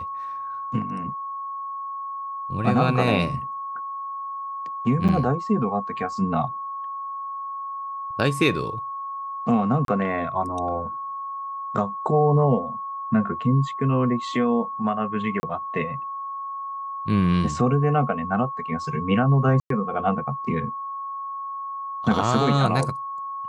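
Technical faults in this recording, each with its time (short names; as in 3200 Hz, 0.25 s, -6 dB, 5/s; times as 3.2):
tone 1100 Hz -29 dBFS
5.08–5.09 gap 7 ms
9.85–9.88 gap 32 ms
15.4–15.43 gap 30 ms
19.6–19.7 gap 0.103 s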